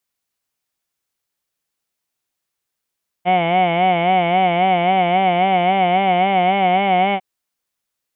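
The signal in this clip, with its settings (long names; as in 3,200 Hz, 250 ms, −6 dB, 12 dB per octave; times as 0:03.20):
vowel from formants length 3.95 s, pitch 175 Hz, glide +1.5 semitones, vibrato 3.7 Hz, vibrato depth 0.95 semitones, F1 740 Hz, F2 2,200 Hz, F3 3,000 Hz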